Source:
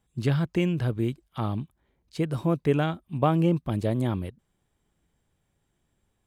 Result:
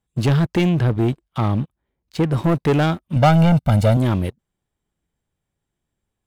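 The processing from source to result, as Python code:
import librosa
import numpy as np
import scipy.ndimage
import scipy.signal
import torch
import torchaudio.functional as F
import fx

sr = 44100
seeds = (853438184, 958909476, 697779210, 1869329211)

y = fx.leveller(x, sr, passes=3)
y = fx.high_shelf(y, sr, hz=4700.0, db=-6.5, at=(0.69, 2.44))
y = fx.comb(y, sr, ms=1.4, depth=0.92, at=(3.16, 3.97))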